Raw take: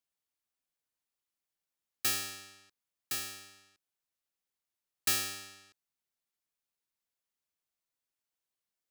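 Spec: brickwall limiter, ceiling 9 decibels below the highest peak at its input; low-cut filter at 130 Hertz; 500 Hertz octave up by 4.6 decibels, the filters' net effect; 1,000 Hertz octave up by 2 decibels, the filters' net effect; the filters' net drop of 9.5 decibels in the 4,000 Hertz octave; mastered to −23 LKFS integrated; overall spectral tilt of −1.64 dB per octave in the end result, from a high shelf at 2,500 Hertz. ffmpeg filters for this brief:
ffmpeg -i in.wav -af "highpass=130,equalizer=frequency=500:width_type=o:gain=6,equalizer=frequency=1000:width_type=o:gain=4,highshelf=frequency=2500:gain=-8,equalizer=frequency=4000:width_type=o:gain=-5,volume=21.5dB,alimiter=limit=-10.5dB:level=0:latency=1" out.wav

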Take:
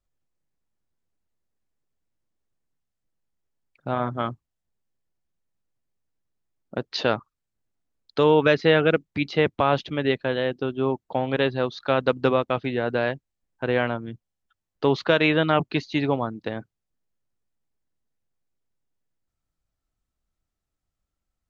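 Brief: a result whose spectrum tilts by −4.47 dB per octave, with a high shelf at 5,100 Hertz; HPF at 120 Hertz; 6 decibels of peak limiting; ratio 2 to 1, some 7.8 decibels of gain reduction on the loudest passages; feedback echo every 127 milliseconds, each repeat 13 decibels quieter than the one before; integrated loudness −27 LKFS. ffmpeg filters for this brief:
ffmpeg -i in.wav -af "highpass=120,highshelf=frequency=5100:gain=-9,acompressor=threshold=-28dB:ratio=2,alimiter=limit=-17.5dB:level=0:latency=1,aecho=1:1:127|254|381:0.224|0.0493|0.0108,volume=4.5dB" out.wav

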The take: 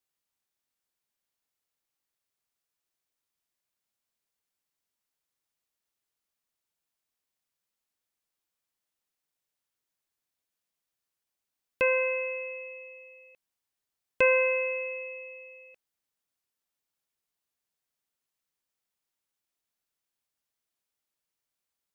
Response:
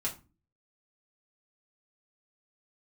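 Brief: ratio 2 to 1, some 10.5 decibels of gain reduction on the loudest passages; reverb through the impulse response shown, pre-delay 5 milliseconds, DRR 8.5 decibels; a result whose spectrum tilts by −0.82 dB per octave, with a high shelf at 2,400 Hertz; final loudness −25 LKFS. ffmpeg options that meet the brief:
-filter_complex "[0:a]highshelf=frequency=2400:gain=4,acompressor=threshold=-37dB:ratio=2,asplit=2[link_01][link_02];[1:a]atrim=start_sample=2205,adelay=5[link_03];[link_02][link_03]afir=irnorm=-1:irlink=0,volume=-12dB[link_04];[link_01][link_04]amix=inputs=2:normalize=0,volume=10dB"

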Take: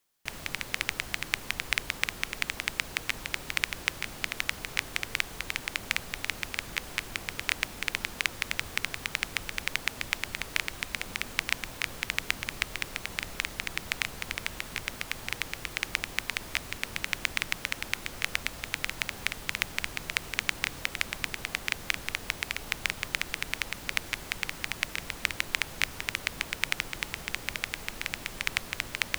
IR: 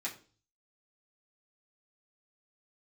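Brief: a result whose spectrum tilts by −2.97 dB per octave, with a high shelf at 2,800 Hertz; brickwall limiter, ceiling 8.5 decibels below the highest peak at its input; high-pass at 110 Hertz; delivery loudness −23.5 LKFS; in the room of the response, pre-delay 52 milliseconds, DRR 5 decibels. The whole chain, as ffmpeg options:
-filter_complex "[0:a]highpass=110,highshelf=frequency=2800:gain=-5.5,alimiter=limit=-15dB:level=0:latency=1,asplit=2[link_01][link_02];[1:a]atrim=start_sample=2205,adelay=52[link_03];[link_02][link_03]afir=irnorm=-1:irlink=0,volume=-7dB[link_04];[link_01][link_04]amix=inputs=2:normalize=0,volume=14dB"

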